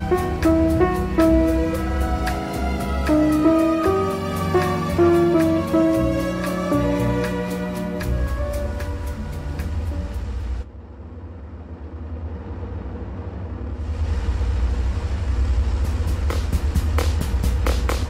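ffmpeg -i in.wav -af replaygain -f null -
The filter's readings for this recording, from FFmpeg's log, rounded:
track_gain = +1.4 dB
track_peak = 0.372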